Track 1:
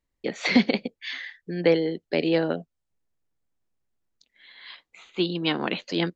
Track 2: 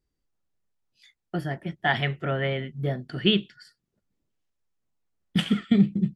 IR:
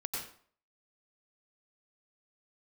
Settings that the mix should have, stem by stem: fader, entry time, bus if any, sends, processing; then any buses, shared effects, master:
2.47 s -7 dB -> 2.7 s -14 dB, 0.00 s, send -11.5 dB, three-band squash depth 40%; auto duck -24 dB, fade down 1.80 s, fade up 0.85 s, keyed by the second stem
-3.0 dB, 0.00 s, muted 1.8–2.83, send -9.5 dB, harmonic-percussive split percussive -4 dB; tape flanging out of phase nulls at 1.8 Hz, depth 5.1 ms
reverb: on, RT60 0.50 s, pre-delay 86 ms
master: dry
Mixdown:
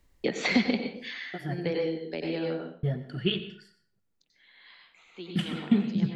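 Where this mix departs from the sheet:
stem 1 -7.0 dB -> +0.5 dB; master: extra low shelf 87 Hz +6 dB

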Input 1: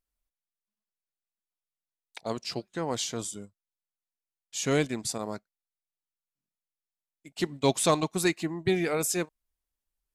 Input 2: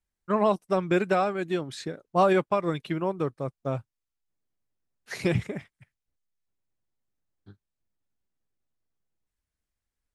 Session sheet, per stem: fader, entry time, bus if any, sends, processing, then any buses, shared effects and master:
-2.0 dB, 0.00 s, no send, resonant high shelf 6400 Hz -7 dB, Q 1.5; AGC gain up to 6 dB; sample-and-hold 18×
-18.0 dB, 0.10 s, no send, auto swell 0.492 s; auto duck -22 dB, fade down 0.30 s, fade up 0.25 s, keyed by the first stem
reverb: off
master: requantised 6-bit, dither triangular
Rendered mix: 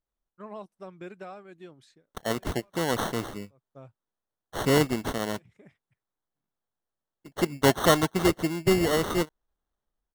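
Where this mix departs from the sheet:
stem 2: missing auto swell 0.492 s; master: missing requantised 6-bit, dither triangular

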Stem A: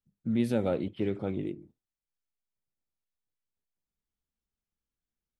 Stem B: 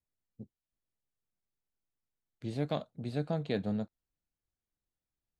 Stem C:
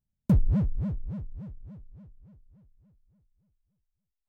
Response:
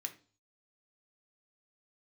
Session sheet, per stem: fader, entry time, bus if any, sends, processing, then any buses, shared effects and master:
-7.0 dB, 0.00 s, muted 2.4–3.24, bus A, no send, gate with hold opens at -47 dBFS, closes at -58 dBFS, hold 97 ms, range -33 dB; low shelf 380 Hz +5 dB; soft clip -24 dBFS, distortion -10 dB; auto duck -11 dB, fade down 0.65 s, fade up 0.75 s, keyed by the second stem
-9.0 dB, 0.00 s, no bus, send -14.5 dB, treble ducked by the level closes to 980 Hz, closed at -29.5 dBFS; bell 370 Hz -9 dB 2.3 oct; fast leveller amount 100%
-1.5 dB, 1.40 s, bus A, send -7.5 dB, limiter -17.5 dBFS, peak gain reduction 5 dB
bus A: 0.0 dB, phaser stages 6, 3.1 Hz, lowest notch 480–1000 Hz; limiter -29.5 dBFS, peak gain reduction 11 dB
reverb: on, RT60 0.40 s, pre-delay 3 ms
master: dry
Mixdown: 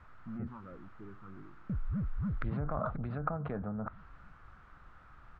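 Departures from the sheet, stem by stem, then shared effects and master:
stem B -9.0 dB -> -2.5 dB; stem C: send off; master: extra synth low-pass 1300 Hz, resonance Q 5

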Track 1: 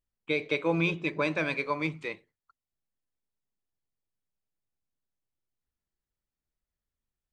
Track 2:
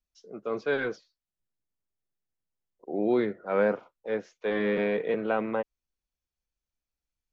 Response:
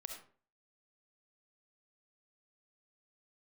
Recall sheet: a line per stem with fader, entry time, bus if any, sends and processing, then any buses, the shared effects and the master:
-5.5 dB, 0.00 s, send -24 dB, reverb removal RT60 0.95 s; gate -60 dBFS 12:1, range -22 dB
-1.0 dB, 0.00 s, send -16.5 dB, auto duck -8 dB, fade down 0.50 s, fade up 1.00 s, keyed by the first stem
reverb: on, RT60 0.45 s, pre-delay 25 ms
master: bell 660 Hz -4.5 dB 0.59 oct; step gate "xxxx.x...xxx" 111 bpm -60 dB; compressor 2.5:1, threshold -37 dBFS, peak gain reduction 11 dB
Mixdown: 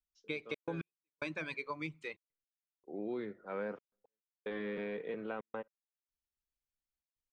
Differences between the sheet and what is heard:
stem 2 -1.0 dB -> -9.0 dB; reverb return -9.0 dB

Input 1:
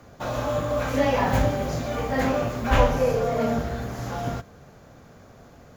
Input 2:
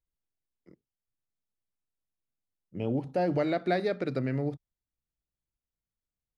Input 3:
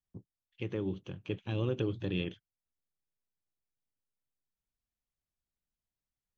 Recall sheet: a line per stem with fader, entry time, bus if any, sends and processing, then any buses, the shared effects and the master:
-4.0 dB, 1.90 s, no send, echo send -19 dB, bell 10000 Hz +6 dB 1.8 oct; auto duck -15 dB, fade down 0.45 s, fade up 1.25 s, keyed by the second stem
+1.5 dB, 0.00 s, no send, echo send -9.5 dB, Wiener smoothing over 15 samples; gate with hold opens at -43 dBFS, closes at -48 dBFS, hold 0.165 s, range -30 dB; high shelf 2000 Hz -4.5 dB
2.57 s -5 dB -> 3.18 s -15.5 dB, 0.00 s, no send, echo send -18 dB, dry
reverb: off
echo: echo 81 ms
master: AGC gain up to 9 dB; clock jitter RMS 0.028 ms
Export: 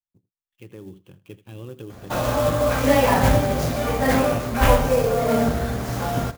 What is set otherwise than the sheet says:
stem 2: muted; stem 3 -5.0 dB -> -14.0 dB

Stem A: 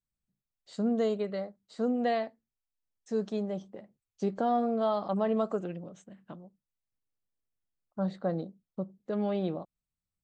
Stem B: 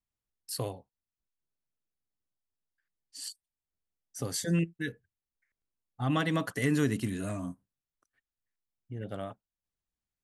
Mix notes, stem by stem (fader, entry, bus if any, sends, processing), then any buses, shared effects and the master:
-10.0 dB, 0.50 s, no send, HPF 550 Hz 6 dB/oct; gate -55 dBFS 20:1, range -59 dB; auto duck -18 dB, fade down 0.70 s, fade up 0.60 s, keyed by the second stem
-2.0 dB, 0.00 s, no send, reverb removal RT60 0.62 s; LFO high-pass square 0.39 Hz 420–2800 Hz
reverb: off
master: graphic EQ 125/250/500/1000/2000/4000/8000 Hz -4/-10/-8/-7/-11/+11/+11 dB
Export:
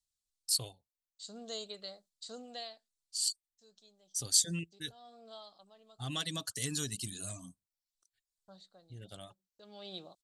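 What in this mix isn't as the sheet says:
stem A -10.0 dB -> -1.5 dB; stem B: missing LFO high-pass square 0.39 Hz 420–2800 Hz

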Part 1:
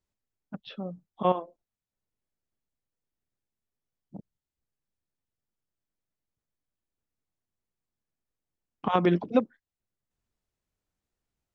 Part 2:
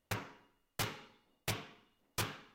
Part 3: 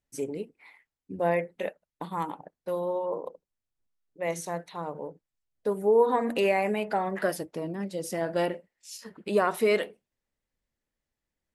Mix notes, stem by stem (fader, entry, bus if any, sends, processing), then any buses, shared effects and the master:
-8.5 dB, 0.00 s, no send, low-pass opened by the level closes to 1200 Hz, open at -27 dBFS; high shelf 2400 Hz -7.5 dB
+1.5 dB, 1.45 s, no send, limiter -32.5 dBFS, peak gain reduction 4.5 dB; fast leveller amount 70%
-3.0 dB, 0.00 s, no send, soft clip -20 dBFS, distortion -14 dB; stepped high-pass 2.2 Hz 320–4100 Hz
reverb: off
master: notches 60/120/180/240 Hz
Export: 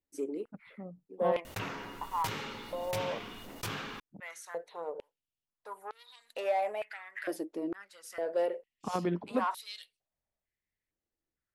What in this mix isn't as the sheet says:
stem 3 -3.0 dB -> -9.5 dB; master: missing notches 60/120/180/240 Hz

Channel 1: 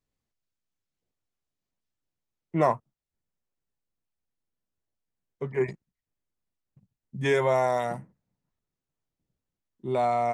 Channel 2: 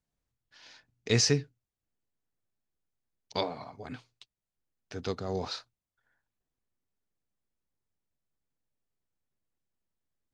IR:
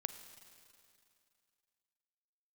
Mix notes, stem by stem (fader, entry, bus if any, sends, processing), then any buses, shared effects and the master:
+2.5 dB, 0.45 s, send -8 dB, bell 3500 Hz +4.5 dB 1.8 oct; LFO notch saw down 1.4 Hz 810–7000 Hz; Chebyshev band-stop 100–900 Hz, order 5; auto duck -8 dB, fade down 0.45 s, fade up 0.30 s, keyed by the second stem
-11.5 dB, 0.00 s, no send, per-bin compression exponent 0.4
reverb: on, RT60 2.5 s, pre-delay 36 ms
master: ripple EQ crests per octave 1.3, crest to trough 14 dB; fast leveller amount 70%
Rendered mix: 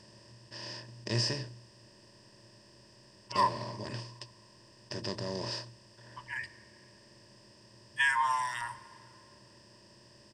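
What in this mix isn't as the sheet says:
stem 1: entry 0.45 s -> 0.75 s; master: missing fast leveller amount 70%

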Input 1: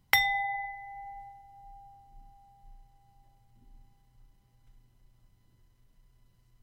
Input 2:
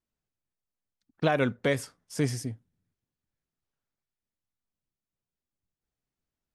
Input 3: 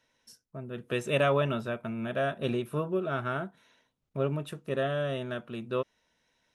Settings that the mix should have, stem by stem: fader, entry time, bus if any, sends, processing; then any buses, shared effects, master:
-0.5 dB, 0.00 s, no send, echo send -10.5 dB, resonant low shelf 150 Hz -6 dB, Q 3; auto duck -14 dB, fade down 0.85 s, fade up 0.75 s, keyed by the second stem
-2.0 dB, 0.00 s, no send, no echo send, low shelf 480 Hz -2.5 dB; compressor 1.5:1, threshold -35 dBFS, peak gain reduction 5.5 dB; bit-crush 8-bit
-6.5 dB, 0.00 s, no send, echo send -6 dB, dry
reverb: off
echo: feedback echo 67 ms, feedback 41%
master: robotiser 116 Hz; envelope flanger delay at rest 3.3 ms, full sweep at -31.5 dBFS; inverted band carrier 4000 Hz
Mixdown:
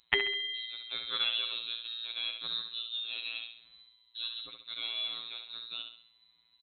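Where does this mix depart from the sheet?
stem 2: muted; master: missing envelope flanger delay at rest 3.3 ms, full sweep at -31.5 dBFS

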